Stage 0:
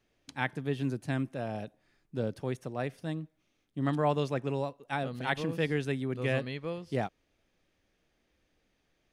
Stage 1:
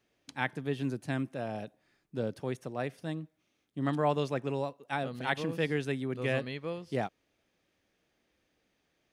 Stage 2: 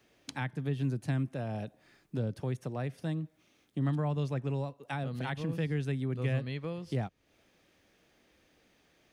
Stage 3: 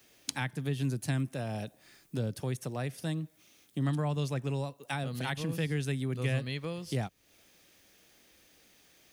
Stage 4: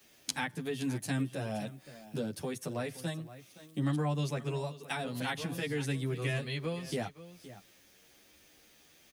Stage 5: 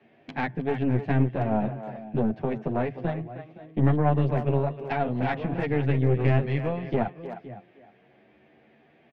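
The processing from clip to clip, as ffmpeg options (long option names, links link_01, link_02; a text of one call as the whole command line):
ffmpeg -i in.wav -af "highpass=frequency=120:poles=1" out.wav
ffmpeg -i in.wav -filter_complex "[0:a]acrossover=split=160[link_01][link_02];[link_02]acompressor=threshold=-47dB:ratio=4[link_03];[link_01][link_03]amix=inputs=2:normalize=0,volume=8.5dB" out.wav
ffmpeg -i in.wav -af "crystalizer=i=3.5:c=0" out.wav
ffmpeg -i in.wav -filter_complex "[0:a]acrossover=split=160[link_01][link_02];[link_01]acompressor=threshold=-44dB:ratio=6[link_03];[link_03][link_02]amix=inputs=2:normalize=0,aecho=1:1:519:0.168,asplit=2[link_04][link_05];[link_05]adelay=10,afreqshift=0.45[link_06];[link_04][link_06]amix=inputs=2:normalize=1,volume=3.5dB" out.wav
ffmpeg -i in.wav -filter_complex "[0:a]highpass=100,equalizer=frequency=130:width_type=q:width=4:gain=9,equalizer=frequency=220:width_type=q:width=4:gain=8,equalizer=frequency=380:width_type=q:width=4:gain=6,equalizer=frequency=700:width_type=q:width=4:gain=9,equalizer=frequency=1300:width_type=q:width=4:gain=-6,lowpass=frequency=2300:width=0.5412,lowpass=frequency=2300:width=1.3066,aeval=exprs='0.158*(cos(1*acos(clip(val(0)/0.158,-1,1)))-cos(1*PI/2))+0.0282*(cos(4*acos(clip(val(0)/0.158,-1,1)))-cos(4*PI/2))':channel_layout=same,asplit=2[link_01][link_02];[link_02]adelay=310,highpass=300,lowpass=3400,asoftclip=type=hard:threshold=-23dB,volume=-10dB[link_03];[link_01][link_03]amix=inputs=2:normalize=0,volume=4.5dB" out.wav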